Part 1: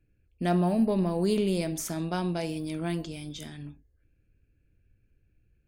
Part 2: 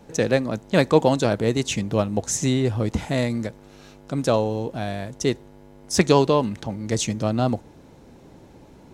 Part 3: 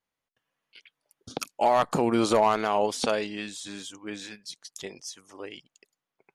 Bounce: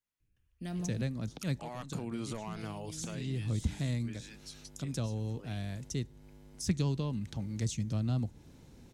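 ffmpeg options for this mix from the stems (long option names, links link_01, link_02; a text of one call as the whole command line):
ffmpeg -i stem1.wav -i stem2.wav -i stem3.wav -filter_complex "[0:a]adelay=200,volume=-6dB,asplit=3[link_01][link_02][link_03];[link_01]atrim=end=1.02,asetpts=PTS-STARTPTS,afade=type=out:start_time=1.016:duration=0.004:curve=hsin[link_04];[link_02]atrim=start=1.02:end=2.47,asetpts=PTS-STARTPTS,volume=0[link_05];[link_03]atrim=start=2.47,asetpts=PTS-STARTPTS,afade=type=in:duration=0.004:curve=hsin[link_06];[link_04][link_05][link_06]concat=n=3:v=0:a=1[link_07];[1:a]adelay=700,volume=-2.5dB[link_08];[2:a]equalizer=frequency=4100:width=1.5:gain=-3.5,volume=-3.5dB,asplit=2[link_09][link_10];[link_10]apad=whole_len=425019[link_11];[link_08][link_11]sidechaincompress=threshold=-41dB:ratio=6:attack=11:release=106[link_12];[link_07][link_12][link_09]amix=inputs=3:normalize=0,equalizer=frequency=670:width_type=o:width=2.9:gain=-11.5,acrossover=split=220[link_13][link_14];[link_14]acompressor=threshold=-44dB:ratio=2.5[link_15];[link_13][link_15]amix=inputs=2:normalize=0" out.wav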